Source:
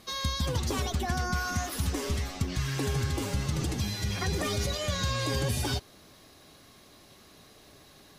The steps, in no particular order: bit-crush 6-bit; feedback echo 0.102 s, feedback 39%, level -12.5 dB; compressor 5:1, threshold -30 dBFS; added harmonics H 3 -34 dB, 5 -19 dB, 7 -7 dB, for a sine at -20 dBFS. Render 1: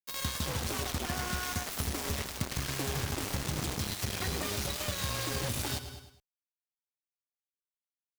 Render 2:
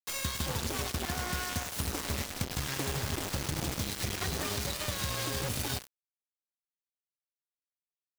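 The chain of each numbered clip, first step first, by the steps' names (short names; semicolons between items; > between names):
bit-crush > feedback echo > added harmonics > compressor; added harmonics > compressor > feedback echo > bit-crush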